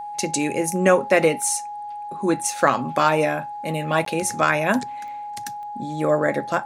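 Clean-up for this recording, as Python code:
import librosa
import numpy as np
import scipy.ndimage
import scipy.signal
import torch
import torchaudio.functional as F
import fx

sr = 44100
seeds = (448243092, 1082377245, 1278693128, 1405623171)

y = fx.fix_declick_ar(x, sr, threshold=10.0)
y = fx.notch(y, sr, hz=830.0, q=30.0)
y = fx.fix_interpolate(y, sr, at_s=(4.05,), length_ms=13.0)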